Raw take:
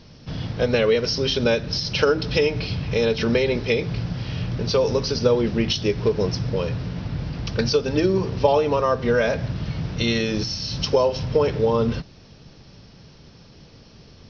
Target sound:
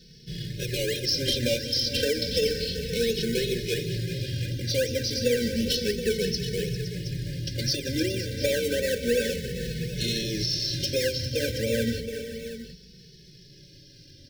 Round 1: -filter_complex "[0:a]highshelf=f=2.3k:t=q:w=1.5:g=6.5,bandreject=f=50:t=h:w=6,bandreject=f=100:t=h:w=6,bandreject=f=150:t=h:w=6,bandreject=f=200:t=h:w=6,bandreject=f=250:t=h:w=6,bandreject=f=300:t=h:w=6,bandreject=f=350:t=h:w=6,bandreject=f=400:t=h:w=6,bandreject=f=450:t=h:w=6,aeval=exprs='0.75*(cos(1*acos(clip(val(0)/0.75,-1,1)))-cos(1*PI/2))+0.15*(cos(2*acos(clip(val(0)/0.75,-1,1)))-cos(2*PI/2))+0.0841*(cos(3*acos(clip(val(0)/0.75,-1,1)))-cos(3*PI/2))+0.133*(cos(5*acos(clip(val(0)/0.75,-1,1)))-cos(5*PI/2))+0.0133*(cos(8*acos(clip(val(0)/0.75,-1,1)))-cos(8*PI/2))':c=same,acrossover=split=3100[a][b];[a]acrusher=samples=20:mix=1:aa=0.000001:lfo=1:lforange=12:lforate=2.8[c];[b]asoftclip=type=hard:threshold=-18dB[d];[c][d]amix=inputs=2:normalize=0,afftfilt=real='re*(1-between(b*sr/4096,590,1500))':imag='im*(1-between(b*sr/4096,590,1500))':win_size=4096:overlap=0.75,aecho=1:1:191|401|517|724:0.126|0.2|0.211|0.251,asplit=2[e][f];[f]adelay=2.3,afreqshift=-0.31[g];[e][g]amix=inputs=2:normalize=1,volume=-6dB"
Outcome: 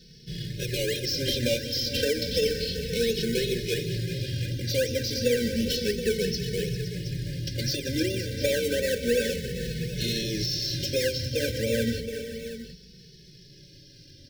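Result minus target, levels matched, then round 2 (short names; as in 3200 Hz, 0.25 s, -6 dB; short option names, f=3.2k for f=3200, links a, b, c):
hard clip: distortion +21 dB
-filter_complex "[0:a]highshelf=f=2.3k:t=q:w=1.5:g=6.5,bandreject=f=50:t=h:w=6,bandreject=f=100:t=h:w=6,bandreject=f=150:t=h:w=6,bandreject=f=200:t=h:w=6,bandreject=f=250:t=h:w=6,bandreject=f=300:t=h:w=6,bandreject=f=350:t=h:w=6,bandreject=f=400:t=h:w=6,bandreject=f=450:t=h:w=6,aeval=exprs='0.75*(cos(1*acos(clip(val(0)/0.75,-1,1)))-cos(1*PI/2))+0.15*(cos(2*acos(clip(val(0)/0.75,-1,1)))-cos(2*PI/2))+0.0841*(cos(3*acos(clip(val(0)/0.75,-1,1)))-cos(3*PI/2))+0.133*(cos(5*acos(clip(val(0)/0.75,-1,1)))-cos(5*PI/2))+0.0133*(cos(8*acos(clip(val(0)/0.75,-1,1)))-cos(8*PI/2))':c=same,acrossover=split=3100[a][b];[a]acrusher=samples=20:mix=1:aa=0.000001:lfo=1:lforange=12:lforate=2.8[c];[b]asoftclip=type=hard:threshold=-9.5dB[d];[c][d]amix=inputs=2:normalize=0,afftfilt=real='re*(1-between(b*sr/4096,590,1500))':imag='im*(1-between(b*sr/4096,590,1500))':win_size=4096:overlap=0.75,aecho=1:1:191|401|517|724:0.126|0.2|0.211|0.251,asplit=2[e][f];[f]adelay=2.3,afreqshift=-0.31[g];[e][g]amix=inputs=2:normalize=1,volume=-6dB"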